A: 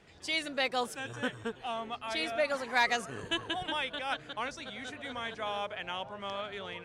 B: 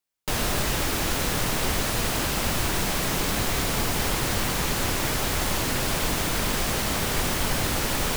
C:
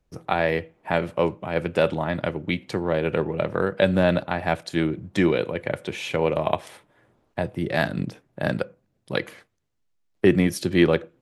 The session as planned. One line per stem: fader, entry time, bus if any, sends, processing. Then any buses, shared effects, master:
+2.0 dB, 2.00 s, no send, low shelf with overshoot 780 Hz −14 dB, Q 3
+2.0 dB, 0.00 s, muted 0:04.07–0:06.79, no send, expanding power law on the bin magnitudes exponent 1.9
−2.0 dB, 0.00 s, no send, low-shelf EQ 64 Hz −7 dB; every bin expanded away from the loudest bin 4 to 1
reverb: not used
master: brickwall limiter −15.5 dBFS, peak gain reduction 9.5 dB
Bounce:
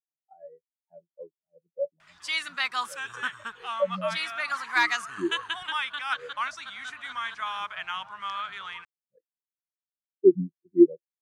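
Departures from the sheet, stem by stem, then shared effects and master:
stem B: muted
master: missing brickwall limiter −15.5 dBFS, peak gain reduction 9.5 dB

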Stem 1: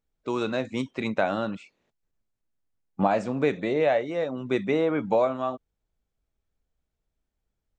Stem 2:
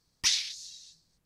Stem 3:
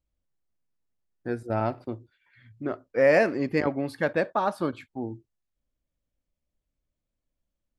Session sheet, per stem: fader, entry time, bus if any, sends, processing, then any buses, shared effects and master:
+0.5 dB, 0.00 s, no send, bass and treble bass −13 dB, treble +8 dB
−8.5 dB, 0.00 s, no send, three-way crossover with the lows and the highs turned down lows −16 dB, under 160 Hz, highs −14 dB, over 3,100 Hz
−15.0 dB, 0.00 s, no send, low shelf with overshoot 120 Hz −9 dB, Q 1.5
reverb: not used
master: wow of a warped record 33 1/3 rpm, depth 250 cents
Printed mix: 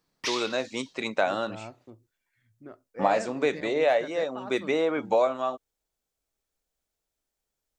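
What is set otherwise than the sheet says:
stem 2 −8.5 dB → +2.5 dB
stem 3: missing low shelf with overshoot 120 Hz −9 dB, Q 1.5
master: missing wow of a warped record 33 1/3 rpm, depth 250 cents

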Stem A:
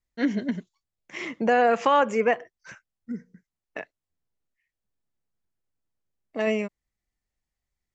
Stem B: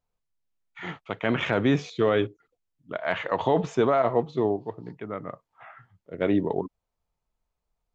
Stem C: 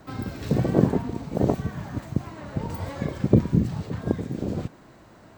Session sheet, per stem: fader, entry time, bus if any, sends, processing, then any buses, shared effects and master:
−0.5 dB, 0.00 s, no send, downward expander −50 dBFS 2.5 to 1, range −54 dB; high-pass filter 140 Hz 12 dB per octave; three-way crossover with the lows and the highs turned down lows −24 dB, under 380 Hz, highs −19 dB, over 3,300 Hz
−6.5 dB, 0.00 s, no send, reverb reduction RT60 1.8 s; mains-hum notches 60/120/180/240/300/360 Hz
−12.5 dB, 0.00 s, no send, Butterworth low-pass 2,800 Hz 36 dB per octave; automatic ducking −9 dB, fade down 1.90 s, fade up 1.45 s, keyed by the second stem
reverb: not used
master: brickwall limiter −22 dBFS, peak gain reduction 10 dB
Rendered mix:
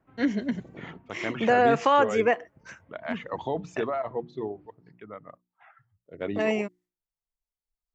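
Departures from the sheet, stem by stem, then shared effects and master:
stem A: missing three-way crossover with the lows and the highs turned down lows −24 dB, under 380 Hz, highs −19 dB, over 3,300 Hz
stem C −12.5 dB → −21.0 dB
master: missing brickwall limiter −22 dBFS, peak gain reduction 10 dB

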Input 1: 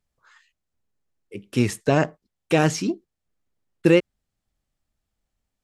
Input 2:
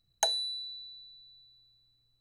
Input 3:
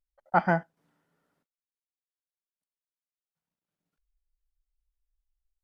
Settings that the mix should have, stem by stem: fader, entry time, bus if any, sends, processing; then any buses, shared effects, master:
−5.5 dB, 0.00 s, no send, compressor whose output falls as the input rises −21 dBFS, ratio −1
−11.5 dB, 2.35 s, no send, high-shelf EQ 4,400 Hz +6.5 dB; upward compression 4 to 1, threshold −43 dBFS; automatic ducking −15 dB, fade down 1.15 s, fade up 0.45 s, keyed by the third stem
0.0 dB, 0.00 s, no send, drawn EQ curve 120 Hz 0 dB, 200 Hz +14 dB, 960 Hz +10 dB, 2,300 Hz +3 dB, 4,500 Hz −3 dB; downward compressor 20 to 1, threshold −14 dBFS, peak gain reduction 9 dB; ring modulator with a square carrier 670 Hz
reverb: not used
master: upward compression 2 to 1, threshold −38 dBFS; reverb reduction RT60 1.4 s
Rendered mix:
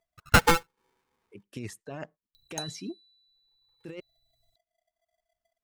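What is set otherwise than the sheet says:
stem 1 −5.5 dB → −16.0 dB
master: missing upward compression 2 to 1, threshold −38 dBFS

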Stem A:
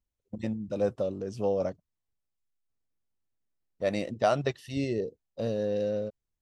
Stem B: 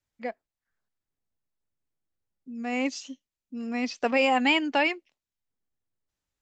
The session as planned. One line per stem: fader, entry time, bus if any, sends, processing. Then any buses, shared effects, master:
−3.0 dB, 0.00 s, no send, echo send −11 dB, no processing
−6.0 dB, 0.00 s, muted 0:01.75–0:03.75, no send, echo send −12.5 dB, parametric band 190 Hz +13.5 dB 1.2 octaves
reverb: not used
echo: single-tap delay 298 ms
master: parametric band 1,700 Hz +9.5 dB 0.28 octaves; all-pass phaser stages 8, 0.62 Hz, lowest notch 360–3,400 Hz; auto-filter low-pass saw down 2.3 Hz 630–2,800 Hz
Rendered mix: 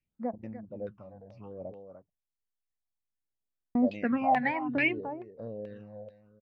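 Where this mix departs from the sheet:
stem A −3.0 dB → −11.0 dB
master: missing parametric band 1,700 Hz +9.5 dB 0.28 octaves

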